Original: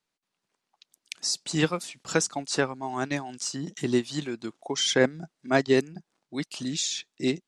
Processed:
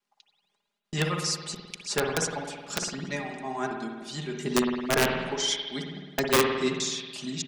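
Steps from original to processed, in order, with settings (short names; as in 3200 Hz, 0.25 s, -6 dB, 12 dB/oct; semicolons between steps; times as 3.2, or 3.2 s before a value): slices in reverse order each 0.309 s, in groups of 3; notches 60/120/180/240/300/360/420/480 Hz; comb 4.9 ms, depth 69%; wrapped overs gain 11.5 dB; spring tank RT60 1.4 s, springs 53 ms, chirp 45 ms, DRR 2.5 dB; gain -3.5 dB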